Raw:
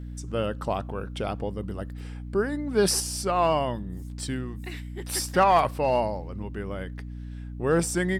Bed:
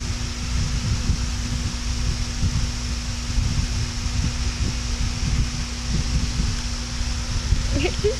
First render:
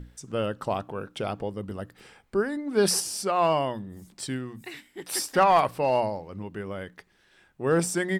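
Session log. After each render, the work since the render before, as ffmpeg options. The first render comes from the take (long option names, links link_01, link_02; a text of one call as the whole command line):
ffmpeg -i in.wav -af "bandreject=frequency=60:width_type=h:width=6,bandreject=frequency=120:width_type=h:width=6,bandreject=frequency=180:width_type=h:width=6,bandreject=frequency=240:width_type=h:width=6,bandreject=frequency=300:width_type=h:width=6" out.wav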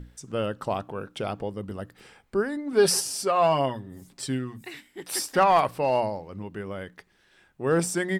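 ffmpeg -i in.wav -filter_complex "[0:a]asettb=1/sr,asplit=3[link_01][link_02][link_03];[link_01]atrim=end=2.724[link_04];[link_02]atrim=start=2.72:end=4.58,asetpts=PTS-STARTPTS,afade=type=in:duration=0.004:curve=qsin,afade=type=out:start_time=1.856:duration=0.004:curve=qsin,aecho=1:1:7.4:0.54,atrim=end_sample=82026[link_05];[link_03]atrim=start=4.576[link_06];[link_04][link_05]acrossfade=duration=0.004:curve1=hsin:curve2=qsin[link_07];[link_07][link_06]acrossfade=duration=0.004:curve1=qsin:curve2=hsin" out.wav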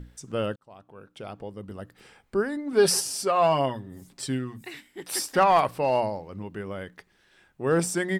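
ffmpeg -i in.wav -filter_complex "[0:a]asplit=2[link_01][link_02];[link_01]atrim=end=0.56,asetpts=PTS-STARTPTS,afade=type=out:start_time=0.556:duration=0.004:curve=hsin[link_03];[link_02]atrim=start=0.56,asetpts=PTS-STARTPTS,afade=type=in:duration=1.81[link_04];[link_03][link_04]concat=n=2:v=0:a=1" out.wav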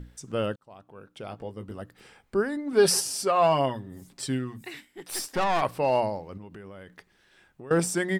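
ffmpeg -i in.wav -filter_complex "[0:a]asettb=1/sr,asplit=3[link_01][link_02][link_03];[link_01]atrim=end=1.294[link_04];[link_02]atrim=start=1.29:end=1.82,asetpts=PTS-STARTPTS,afade=type=in:duration=0.004:curve=qsin,afade=type=out:start_time=0.526:duration=0.004:curve=qsin,asplit=2[link_05][link_06];[link_06]adelay=18,volume=-8dB[link_07];[link_05][link_07]amix=inputs=2:normalize=0,atrim=end_sample=23373[link_08];[link_03]atrim=start=1.816[link_09];[link_04][link_08]acrossfade=duration=0.004:curve1=hsin:curve2=qsin[link_10];[link_10][link_09]acrossfade=duration=0.004:curve1=qsin:curve2=hsin,asettb=1/sr,asplit=3[link_11][link_12][link_13];[link_11]atrim=end=4.854[link_14];[link_12]atrim=start=4.85:end=5.62,asetpts=PTS-STARTPTS,afade=type=in:duration=0.004:curve=qsin,afade=type=out:start_time=0.766:duration=0.004:curve=qsin,aeval=exprs='(tanh(11.2*val(0)+0.65)-tanh(0.65))/11.2':channel_layout=same[link_15];[link_13]atrim=start=5.616[link_16];[link_14][link_15]acrossfade=duration=0.004:curve1=hsin:curve2=qsin[link_17];[link_17][link_16]acrossfade=duration=0.004:curve1=qsin:curve2=hsin,asettb=1/sr,asplit=3[link_18][link_19][link_20];[link_18]atrim=end=6.374[link_21];[link_19]atrim=start=6.37:end=7.71,asetpts=PTS-STARTPTS,afade=type=in:duration=0.004:curve=qsin,afade=type=out:start_time=1.336:duration=0.004:curve=qsin,acompressor=threshold=-40dB:ratio=6:attack=3.2:release=140:knee=1:detection=peak[link_22];[link_20]atrim=start=7.706[link_23];[link_21][link_22]acrossfade=duration=0.004:curve1=hsin:curve2=qsin[link_24];[link_24][link_23]acrossfade=duration=0.004:curve1=qsin:curve2=hsin" out.wav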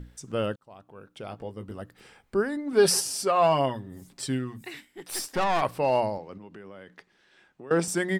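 ffmpeg -i in.wav -filter_complex "[0:a]asettb=1/sr,asplit=3[link_01][link_02][link_03];[link_01]atrim=end=6.184[link_04];[link_02]atrim=start=6.18:end=7.88,asetpts=PTS-STARTPTS,afade=type=in:duration=0.004:curve=qsin,afade=type=out:start_time=1.696:duration=0.004:curve=qsin,acrossover=split=150 7800:gain=0.251 1 0.224[link_05][link_06][link_07];[link_05][link_06][link_07]amix=inputs=3:normalize=0[link_08];[link_03]atrim=start=7.876[link_09];[link_04][link_08]acrossfade=duration=0.004:curve1=hsin:curve2=qsin[link_10];[link_10][link_09]acrossfade=duration=0.004:curve1=qsin:curve2=hsin" out.wav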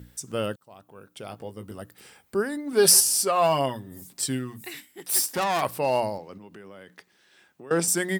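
ffmpeg -i in.wav -af "highpass=71,aemphasis=mode=production:type=50fm" out.wav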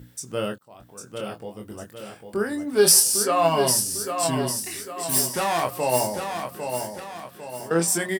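ffmpeg -i in.wav -filter_complex "[0:a]asplit=2[link_01][link_02];[link_02]adelay=24,volume=-5dB[link_03];[link_01][link_03]amix=inputs=2:normalize=0,asplit=2[link_04][link_05];[link_05]aecho=0:1:801|1602|2403|3204|4005:0.473|0.208|0.0916|0.0403|0.0177[link_06];[link_04][link_06]amix=inputs=2:normalize=0" out.wav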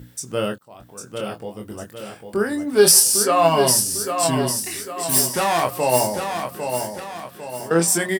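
ffmpeg -i in.wav -af "volume=4dB,alimiter=limit=-1dB:level=0:latency=1" out.wav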